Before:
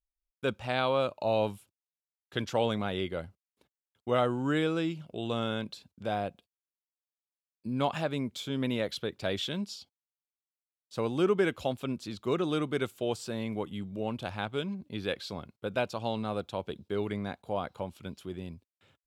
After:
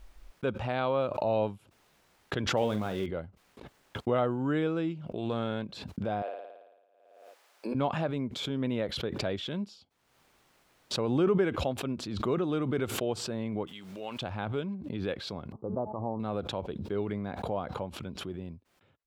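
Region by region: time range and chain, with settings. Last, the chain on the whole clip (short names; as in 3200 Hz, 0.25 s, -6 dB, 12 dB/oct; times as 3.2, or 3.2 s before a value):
2.57–3.06 switching spikes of -29 dBFS + doubler 47 ms -11 dB
5.13–5.63 high shelf 7300 Hz +5.5 dB + Doppler distortion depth 0.1 ms
6.22–7.75 HPF 430 Hz 24 dB/oct + flutter echo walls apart 9.5 m, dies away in 1.1 s
13.67–14.22 weighting filter ITU-R 468 + requantised 10-bit, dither triangular
15.52–16.2 rippled Chebyshev low-pass 1200 Hz, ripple 3 dB + de-hum 214.1 Hz, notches 32
whole clip: LPF 1400 Hz 6 dB/oct; backwards sustainer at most 45 dB/s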